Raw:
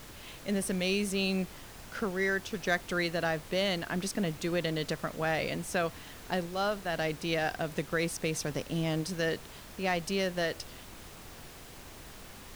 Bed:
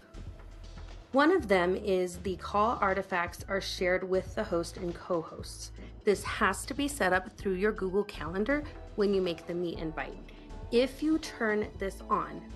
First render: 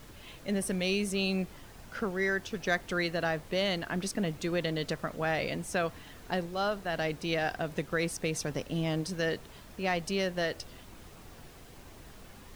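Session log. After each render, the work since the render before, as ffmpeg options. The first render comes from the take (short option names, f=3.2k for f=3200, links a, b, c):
-af "afftdn=nr=6:nf=-49"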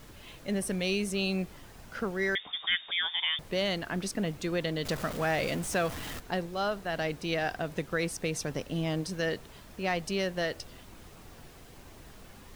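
-filter_complex "[0:a]asettb=1/sr,asplit=3[a][b][c];[a]atrim=end=2.354[d];[b]atrim=start=2.35:end=3.39,asetpts=PTS-STARTPTS,afade=t=in:d=0.004:c=qsin,afade=t=out:st=1.036:d=0.004:c=qsin,lowpass=f=3.1k:t=q:w=0.5098,lowpass=f=3.1k:t=q:w=0.6013,lowpass=f=3.1k:t=q:w=0.9,lowpass=f=3.1k:t=q:w=2.563,afreqshift=-3700[e];[c]atrim=start=3.386[f];[d][e]acrossfade=d=0.004:c1=hsin:c2=qsin[g];[g][f]acrossfade=d=0.004:c1=qsin:c2=hsin,asettb=1/sr,asplit=3[h][i][j];[h]atrim=end=4.854[k];[i]atrim=start=4.85:end=6.2,asetpts=PTS-STARTPTS,afade=t=in:d=0.004:c=qsin,afade=t=out:st=1.346:d=0.004:c=qsin,aeval=exprs='val(0)+0.5*0.0168*sgn(val(0))':c=same[l];[j]atrim=start=6.196[m];[k][l]acrossfade=d=0.004:c1=hsin:c2=qsin[n];[n][m]acrossfade=d=0.004:c1=qsin:c2=hsin"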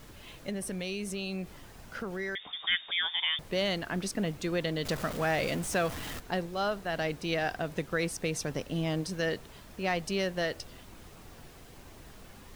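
-filter_complex "[0:a]asettb=1/sr,asplit=3[a][b][c];[a]atrim=end=0.494[d];[b]atrim=start=0.49:end=2.64,asetpts=PTS-STARTPTS,afade=t=in:d=0.004:c=qsin,afade=t=out:st=2.146:d=0.004:c=qsin,acompressor=threshold=-34dB:ratio=2.5:attack=3.2:release=140:knee=1:detection=peak[e];[c]atrim=start=2.636[f];[d][e]acrossfade=d=0.004:c1=hsin:c2=qsin[g];[g][f]acrossfade=d=0.004:c1=qsin:c2=hsin"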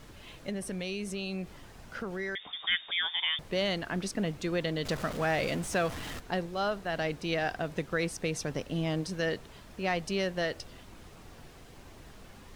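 -af "highshelf=f=12k:g=-10.5"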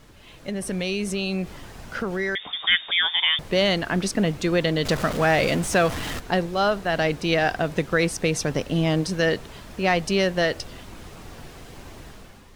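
-af "dynaudnorm=f=150:g=7:m=9.5dB"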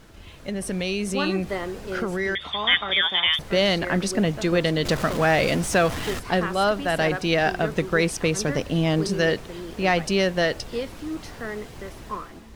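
-filter_complex "[1:a]volume=-3.5dB[a];[0:a][a]amix=inputs=2:normalize=0"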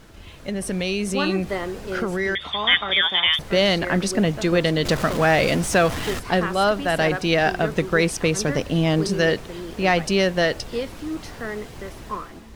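-af "volume=2dB"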